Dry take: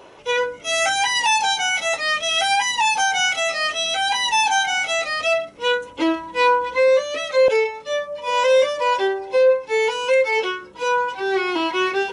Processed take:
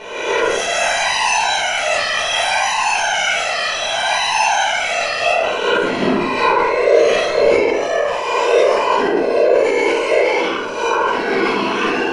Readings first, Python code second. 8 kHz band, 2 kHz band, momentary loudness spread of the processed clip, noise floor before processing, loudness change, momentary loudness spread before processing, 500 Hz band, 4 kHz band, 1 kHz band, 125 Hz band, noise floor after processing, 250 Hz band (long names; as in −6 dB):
+2.5 dB, +3.0 dB, 4 LU, −41 dBFS, +3.5 dB, 5 LU, +4.0 dB, +2.0 dB, +3.5 dB, can't be measured, −21 dBFS, +6.5 dB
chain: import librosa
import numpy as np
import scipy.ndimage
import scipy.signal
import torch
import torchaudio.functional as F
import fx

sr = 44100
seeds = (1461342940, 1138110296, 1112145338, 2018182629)

p1 = fx.spec_swells(x, sr, rise_s=1.12)
p2 = fx.peak_eq(p1, sr, hz=68.0, db=10.5, octaves=0.25)
p3 = fx.notch(p2, sr, hz=3500.0, q=9.8)
p4 = fx.rider(p3, sr, range_db=10, speed_s=0.5)
p5 = p3 + (p4 * 10.0 ** (-1.5 / 20.0))
p6 = fx.whisperise(p5, sr, seeds[0])
p7 = fx.room_shoebox(p6, sr, seeds[1], volume_m3=190.0, walls='mixed', distance_m=1.5)
p8 = fx.sustainer(p7, sr, db_per_s=28.0)
y = p8 * 10.0 ** (-9.5 / 20.0)